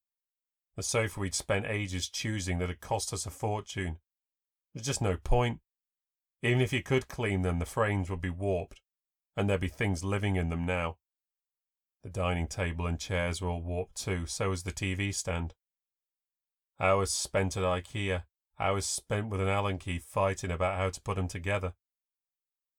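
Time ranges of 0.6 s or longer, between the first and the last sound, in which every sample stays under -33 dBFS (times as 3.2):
3.92–4.76
5.54–6.44
8.63–9.37
10.91–12.05
15.47–16.8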